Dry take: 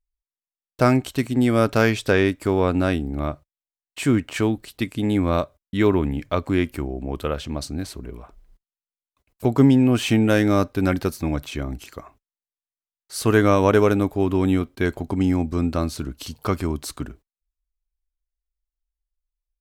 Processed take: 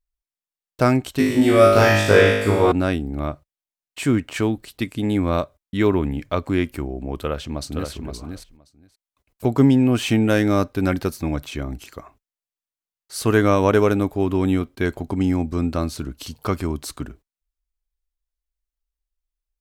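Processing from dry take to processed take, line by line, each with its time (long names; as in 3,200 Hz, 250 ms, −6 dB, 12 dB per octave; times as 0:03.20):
0:01.17–0:02.72: flutter between parallel walls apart 3.3 metres, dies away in 0.95 s
0:07.19–0:07.91: delay throw 520 ms, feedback 10%, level −5.5 dB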